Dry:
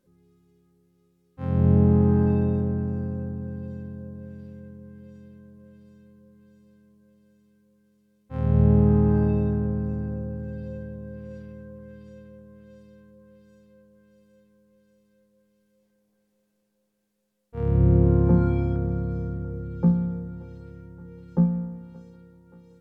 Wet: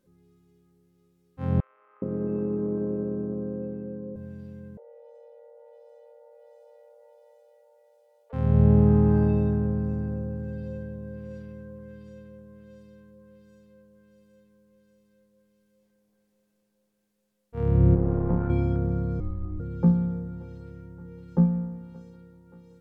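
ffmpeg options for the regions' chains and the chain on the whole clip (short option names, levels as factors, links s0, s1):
-filter_complex "[0:a]asettb=1/sr,asplit=3[s0][s1][s2];[s0]atrim=end=1.604[s3];[s1]atrim=start=1.6:end=4.16,asetpts=PTS-STARTPTS,afade=t=in:d=0.004:c=qsin,afade=t=out:st=2.556:d=0.004:c=qsin,acompressor=threshold=0.0708:ratio=4:attack=3.2:release=140:knee=1:detection=peak,highpass=220,equalizer=f=230:t=q:w=4:g=3,equalizer=f=350:t=q:w=4:g=8,equalizer=f=520:t=q:w=4:g=6,equalizer=f=840:t=q:w=4:g=-10,equalizer=f=1200:t=q:w=4:g=7,equalizer=f=1700:t=q:w=4:g=-8,lowpass=f=2200:w=0.5412,lowpass=f=2200:w=1.3066,acrossover=split=1200[s4][s5];[s4]adelay=420[s6];[s6][s5]amix=inputs=2:normalize=0,atrim=end_sample=112896[s7];[s2]atrim=start=4.156[s8];[s3][s7]acrossfade=d=0.004:c1=hsin:c2=qsin[s9];[s9][s8]acrossfade=d=0.004:c1=qsin:c2=hsin,asettb=1/sr,asplit=3[s10][s11][s12];[s10]atrim=end=4.774[s13];[s11]atrim=start=4.77:end=8.33,asetpts=PTS-STARTPTS,afade=t=in:d=0.004:c=qsin,afade=t=out:st=3.556:d=0.004:c=qsin,equalizer=f=87:t=o:w=1.1:g=13,acompressor=threshold=0.00355:ratio=4:attack=3.2:release=140:knee=1:detection=peak,afreqshift=380[s14];[s12]atrim=start=8.326[s15];[s13][s14]acrossfade=d=0.004:c1=hsin:c2=qsin[s16];[s16][s15]acrossfade=d=0.004:c1=qsin:c2=hsin,asettb=1/sr,asplit=3[s17][s18][s19];[s17]atrim=end=17.954[s20];[s18]atrim=start=17.95:end=18.5,asetpts=PTS-STARTPTS,afade=t=in:d=0.004:c=qsin,afade=t=out:st=0.546:d=0.004:c=qsin,aeval=exprs='if(lt(val(0),0),0.447*val(0),val(0))':c=same,lowpass=1200,tiltshelf=f=820:g=-4.5[s21];[s19]atrim=start=18.496[s22];[s20][s21]acrossfade=d=0.004:c1=hsin:c2=qsin[s23];[s23][s22]acrossfade=d=0.004:c1=qsin:c2=hsin,asettb=1/sr,asplit=3[s24][s25][s26];[s24]atrim=end=19.204[s27];[s25]atrim=start=19.2:end=19.6,asetpts=PTS-STARTPTS,afade=t=in:d=0.004:c=qsin,afade=t=out:st=0.396:d=0.004:c=qsin,aemphasis=mode=reproduction:type=75kf,afreqshift=-160[s28];[s26]atrim=start=19.596[s29];[s27][s28]acrossfade=d=0.004:c1=hsin:c2=qsin[s30];[s30][s29]acrossfade=d=0.004:c1=qsin:c2=hsin"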